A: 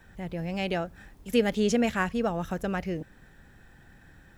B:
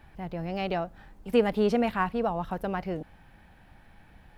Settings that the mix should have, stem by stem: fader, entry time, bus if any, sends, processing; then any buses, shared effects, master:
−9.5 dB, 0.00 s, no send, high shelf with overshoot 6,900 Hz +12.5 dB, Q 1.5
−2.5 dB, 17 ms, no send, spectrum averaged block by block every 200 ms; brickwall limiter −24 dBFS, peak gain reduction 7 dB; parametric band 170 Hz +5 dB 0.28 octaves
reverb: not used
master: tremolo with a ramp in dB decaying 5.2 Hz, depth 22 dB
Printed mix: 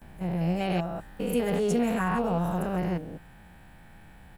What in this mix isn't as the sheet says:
stem B −2.5 dB → +4.5 dB
master: missing tremolo with a ramp in dB decaying 5.2 Hz, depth 22 dB

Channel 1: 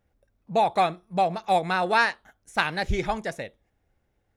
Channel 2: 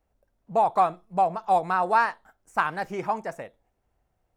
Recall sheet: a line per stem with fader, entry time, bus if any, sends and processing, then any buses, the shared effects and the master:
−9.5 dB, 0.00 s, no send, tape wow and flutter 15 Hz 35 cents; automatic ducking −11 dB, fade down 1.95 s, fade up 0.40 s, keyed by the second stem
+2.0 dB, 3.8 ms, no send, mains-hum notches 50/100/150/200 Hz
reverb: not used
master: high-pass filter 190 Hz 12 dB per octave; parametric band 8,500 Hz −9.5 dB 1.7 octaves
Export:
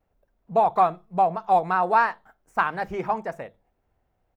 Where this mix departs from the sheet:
stem 2: polarity flipped
master: missing high-pass filter 190 Hz 12 dB per octave

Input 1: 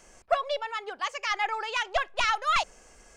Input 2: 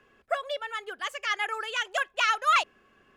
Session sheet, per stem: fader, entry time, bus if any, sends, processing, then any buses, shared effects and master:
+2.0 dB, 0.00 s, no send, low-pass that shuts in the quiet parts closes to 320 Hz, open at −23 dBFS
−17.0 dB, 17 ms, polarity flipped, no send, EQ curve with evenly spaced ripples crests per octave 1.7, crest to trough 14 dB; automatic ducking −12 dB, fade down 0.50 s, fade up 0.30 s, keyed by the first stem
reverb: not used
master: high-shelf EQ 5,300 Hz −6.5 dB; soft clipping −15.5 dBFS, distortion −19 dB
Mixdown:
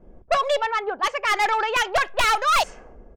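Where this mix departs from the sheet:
stem 1 +2.0 dB → +12.5 dB
master: missing high-shelf EQ 5,300 Hz −6.5 dB

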